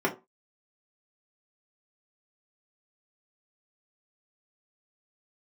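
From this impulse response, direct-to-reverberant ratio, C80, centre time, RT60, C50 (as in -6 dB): -3.5 dB, 20.0 dB, 13 ms, 0.25 s, 14.0 dB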